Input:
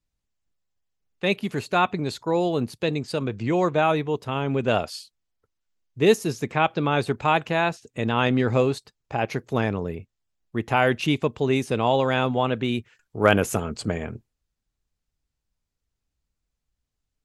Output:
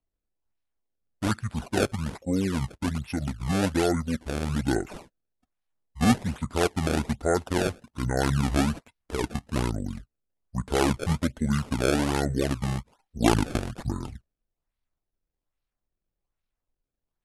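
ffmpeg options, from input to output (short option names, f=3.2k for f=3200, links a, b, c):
-af "acrusher=samples=14:mix=1:aa=0.000001:lfo=1:lforange=22.4:lforate=1.2,asetrate=24046,aresample=44100,atempo=1.83401,volume=-3dB"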